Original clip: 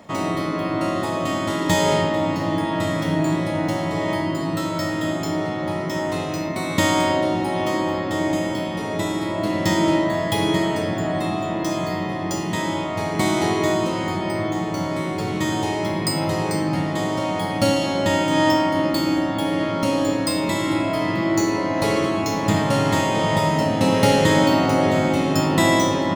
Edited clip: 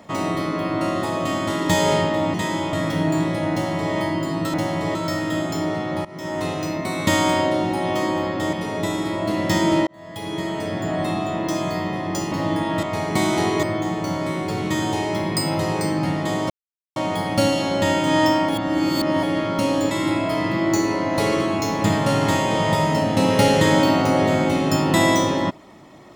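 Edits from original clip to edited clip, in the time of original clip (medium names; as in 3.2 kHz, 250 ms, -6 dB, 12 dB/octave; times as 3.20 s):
2.34–2.85 s: swap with 12.48–12.87 s
3.64–4.05 s: copy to 4.66 s
5.76–6.15 s: fade in, from -20 dB
8.24–8.69 s: delete
10.03–11.17 s: fade in
13.67–14.33 s: delete
17.20 s: insert silence 0.46 s
18.73–19.47 s: reverse
20.15–20.55 s: delete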